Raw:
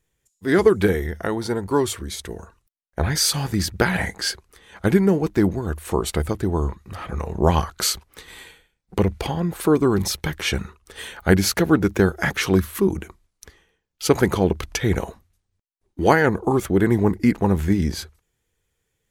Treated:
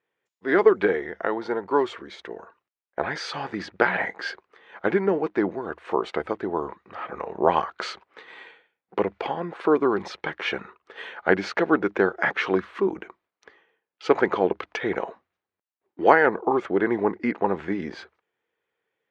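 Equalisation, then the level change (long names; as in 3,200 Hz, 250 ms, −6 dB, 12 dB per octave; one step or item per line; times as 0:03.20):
band-pass filter 430–2,300 Hz
high-frequency loss of the air 74 metres
+2.0 dB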